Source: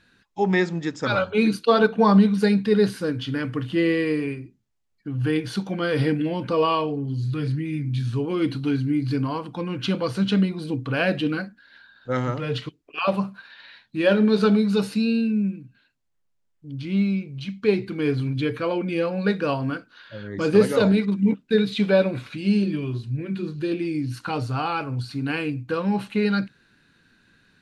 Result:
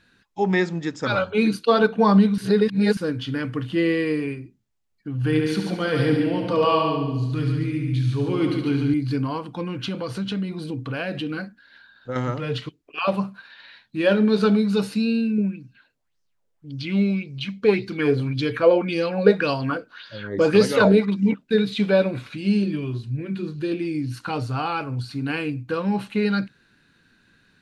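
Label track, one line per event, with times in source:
2.380000	2.970000	reverse
5.180000	8.940000	multi-head echo 71 ms, heads first and second, feedback 45%, level -7 dB
9.670000	12.160000	compressor 3:1, threshold -25 dBFS
15.380000	21.440000	LFO bell 1.8 Hz 450–5700 Hz +14 dB

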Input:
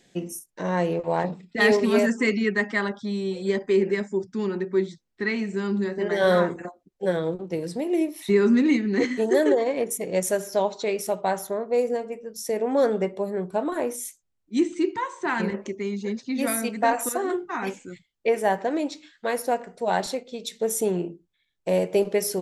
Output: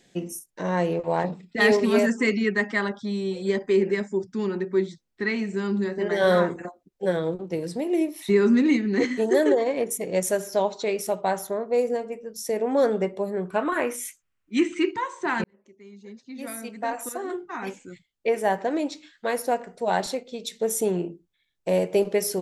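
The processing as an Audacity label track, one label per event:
13.450000	14.910000	band shelf 1800 Hz +10 dB
15.440000	18.750000	fade in

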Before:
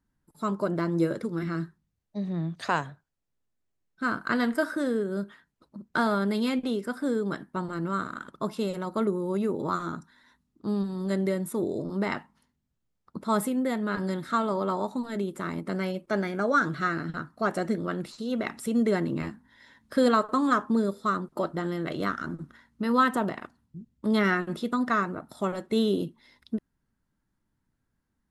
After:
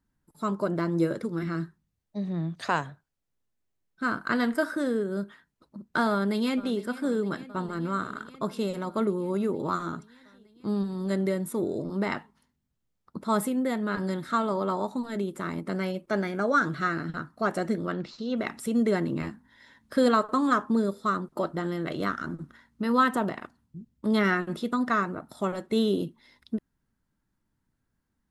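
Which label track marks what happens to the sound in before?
6.110000	6.780000	echo throw 0.46 s, feedback 80%, level -17 dB
17.920000	18.370000	steep low-pass 6200 Hz

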